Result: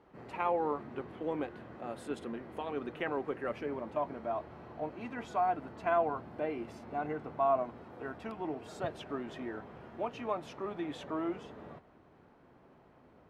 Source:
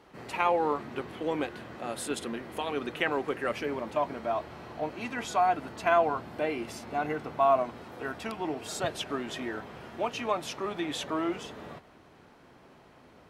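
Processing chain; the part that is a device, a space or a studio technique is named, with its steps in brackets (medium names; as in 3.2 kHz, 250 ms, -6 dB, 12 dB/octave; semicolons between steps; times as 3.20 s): through cloth (treble shelf 2.7 kHz -16.5 dB); trim -4 dB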